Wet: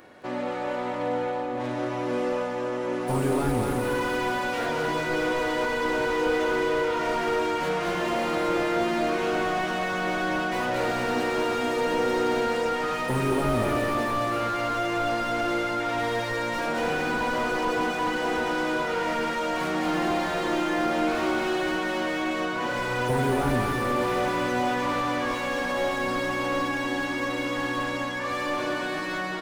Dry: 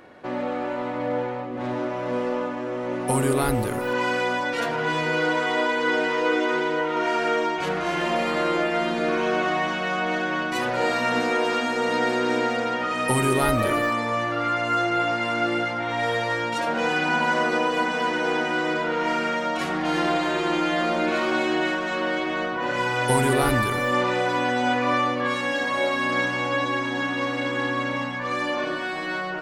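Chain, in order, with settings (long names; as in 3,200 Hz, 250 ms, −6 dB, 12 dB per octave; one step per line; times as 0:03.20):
high-shelf EQ 5,500 Hz +10.5 dB
repeating echo 221 ms, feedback 54%, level −6 dB
slew-rate limiting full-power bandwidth 85 Hz
level −2.5 dB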